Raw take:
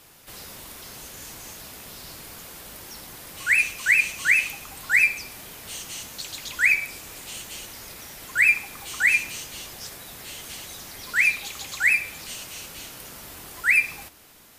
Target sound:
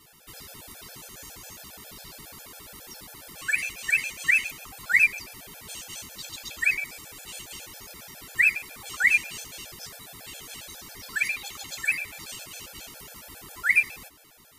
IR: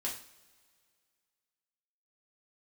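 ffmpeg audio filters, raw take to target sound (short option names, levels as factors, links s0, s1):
-filter_complex "[0:a]asplit=3[s0][s1][s2];[s0]afade=t=out:st=11.7:d=0.02[s3];[s1]acompressor=mode=upward:threshold=0.0355:ratio=2.5,afade=t=in:st=11.7:d=0.02,afade=t=out:st=12.23:d=0.02[s4];[s2]afade=t=in:st=12.23:d=0.02[s5];[s3][s4][s5]amix=inputs=3:normalize=0,afftfilt=real='re*gt(sin(2*PI*7.3*pts/sr)*(1-2*mod(floor(b*sr/1024/450),2)),0)':imag='im*gt(sin(2*PI*7.3*pts/sr)*(1-2*mod(floor(b*sr/1024/450),2)),0)':win_size=1024:overlap=0.75"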